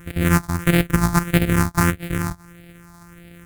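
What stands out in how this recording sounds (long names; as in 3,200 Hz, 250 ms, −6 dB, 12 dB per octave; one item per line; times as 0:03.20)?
a buzz of ramps at a fixed pitch in blocks of 256 samples
phaser sweep stages 4, 1.6 Hz, lowest notch 470–1,000 Hz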